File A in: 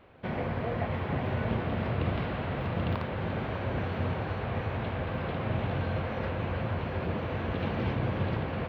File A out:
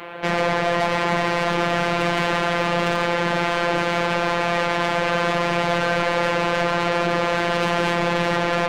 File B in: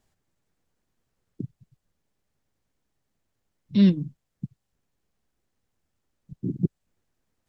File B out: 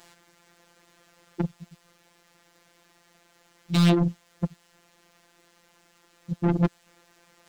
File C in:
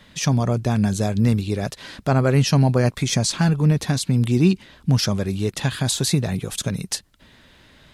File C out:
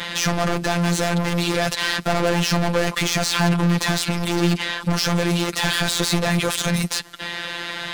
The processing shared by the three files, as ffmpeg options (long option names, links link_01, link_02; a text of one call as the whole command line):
ffmpeg -i in.wav -filter_complex "[0:a]asplit=2[link_01][link_02];[link_02]highpass=frequency=720:poles=1,volume=40dB,asoftclip=type=tanh:threshold=-6dB[link_03];[link_01][link_03]amix=inputs=2:normalize=0,lowpass=frequency=4300:poles=1,volume=-6dB,afftfilt=real='hypot(re,im)*cos(PI*b)':imag='0':win_size=1024:overlap=0.75,volume=-4dB" out.wav